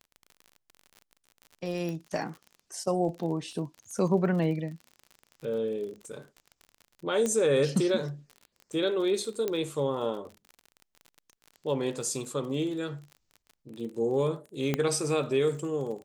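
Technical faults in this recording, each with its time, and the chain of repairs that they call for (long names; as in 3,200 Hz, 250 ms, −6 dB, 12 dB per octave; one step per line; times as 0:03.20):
surface crackle 40 per second −38 dBFS
0:01.89: click −24 dBFS
0:07.26: click −17 dBFS
0:09.48: click −16 dBFS
0:14.74: click −13 dBFS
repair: click removal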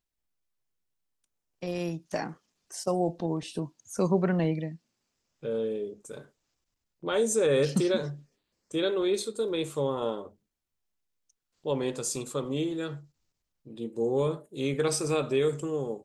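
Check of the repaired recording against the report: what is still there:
0:09.48: click
0:14.74: click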